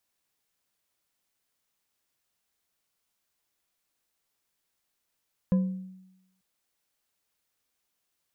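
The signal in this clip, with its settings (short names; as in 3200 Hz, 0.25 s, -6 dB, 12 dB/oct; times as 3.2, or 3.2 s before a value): glass hit bar, lowest mode 187 Hz, decay 0.92 s, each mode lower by 12 dB, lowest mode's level -18 dB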